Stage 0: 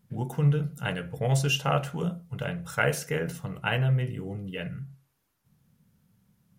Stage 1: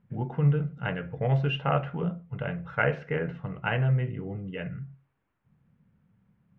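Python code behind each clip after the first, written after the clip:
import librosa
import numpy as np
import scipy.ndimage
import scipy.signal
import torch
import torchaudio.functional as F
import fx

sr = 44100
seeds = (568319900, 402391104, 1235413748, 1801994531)

y = scipy.signal.sosfilt(scipy.signal.butter(4, 2500.0, 'lowpass', fs=sr, output='sos'), x)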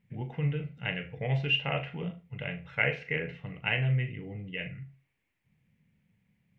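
y = fx.high_shelf_res(x, sr, hz=1700.0, db=7.5, q=3.0)
y = fx.room_flutter(y, sr, wall_m=6.6, rt60_s=0.23)
y = y * 10.0 ** (-5.5 / 20.0)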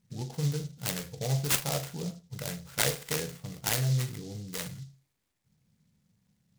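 y = fx.noise_mod_delay(x, sr, seeds[0], noise_hz=5000.0, depth_ms=0.12)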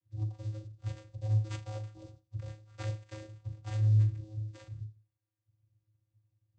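y = fx.vocoder(x, sr, bands=16, carrier='square', carrier_hz=107.0)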